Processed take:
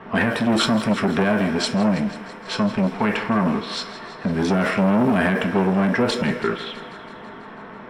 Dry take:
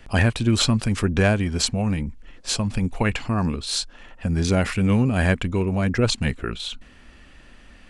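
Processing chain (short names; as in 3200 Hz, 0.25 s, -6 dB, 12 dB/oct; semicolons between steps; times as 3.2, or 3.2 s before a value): added noise pink -42 dBFS; low-pass opened by the level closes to 1500 Hz, open at -16 dBFS; thinning echo 0.164 s, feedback 70%, high-pass 350 Hz, level -14.5 dB; reverb RT60 0.45 s, pre-delay 3 ms, DRR 2 dB; maximiser +3 dB; core saturation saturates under 520 Hz; gain -6 dB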